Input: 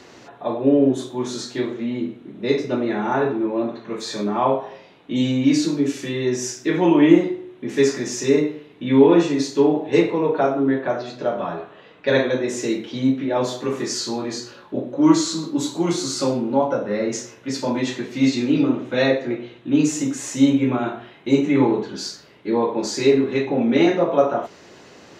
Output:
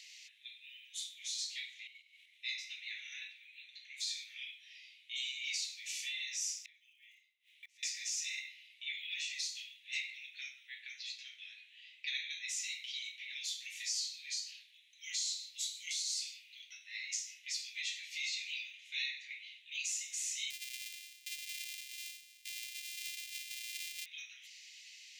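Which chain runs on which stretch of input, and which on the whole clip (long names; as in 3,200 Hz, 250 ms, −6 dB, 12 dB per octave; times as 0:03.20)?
0:01.87–0:02.38: parametric band 2,100 Hz +4 dB 0.27 octaves + downward compressor 16 to 1, threshold −38 dBFS + leveller curve on the samples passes 1
0:06.60–0:07.83: floating-point word with a short mantissa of 6 bits + gate with flip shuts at −21 dBFS, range −27 dB
0:20.50–0:24.06: samples sorted by size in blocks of 128 samples + Chebyshev high-pass filter 340 Hz, order 5 + downward compressor 3 to 1, threshold −34 dBFS
whole clip: Butterworth high-pass 2,100 Hz 72 dB per octave; downward compressor 2.5 to 1, threshold −36 dBFS; level −2 dB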